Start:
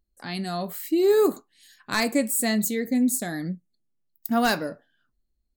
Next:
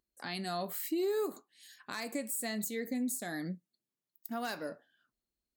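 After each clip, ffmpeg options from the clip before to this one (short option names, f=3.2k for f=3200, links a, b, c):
-af "highpass=f=310:p=1,acompressor=threshold=-25dB:ratio=6,alimiter=limit=-23.5dB:level=0:latency=1:release=425,volume=-2dB"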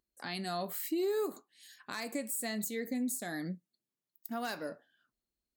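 -af anull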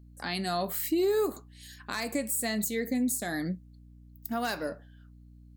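-af "aeval=exprs='val(0)+0.00141*(sin(2*PI*60*n/s)+sin(2*PI*2*60*n/s)/2+sin(2*PI*3*60*n/s)/3+sin(2*PI*4*60*n/s)/4+sin(2*PI*5*60*n/s)/5)':c=same,volume=6dB"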